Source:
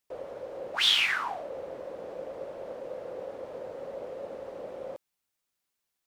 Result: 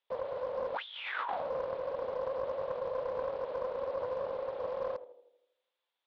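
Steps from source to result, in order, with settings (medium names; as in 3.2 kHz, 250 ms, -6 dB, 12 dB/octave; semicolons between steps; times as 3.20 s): cabinet simulation 470–3600 Hz, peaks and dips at 510 Hz +9 dB, 930 Hz +6 dB, 3.5 kHz +10 dB; on a send: tape echo 79 ms, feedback 62%, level -11 dB, low-pass 1.1 kHz; on the sum: compressor with a negative ratio -32 dBFS, ratio -1; loudspeaker Doppler distortion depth 0.3 ms; trim -3.5 dB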